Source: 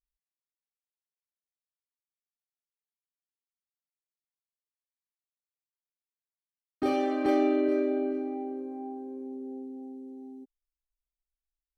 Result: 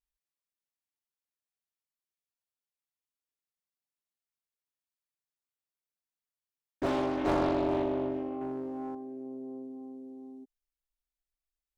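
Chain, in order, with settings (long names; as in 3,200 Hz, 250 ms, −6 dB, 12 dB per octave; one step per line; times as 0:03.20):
0:08.41–0:08.95: leveller curve on the samples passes 1
highs frequency-modulated by the lows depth 0.65 ms
level −2 dB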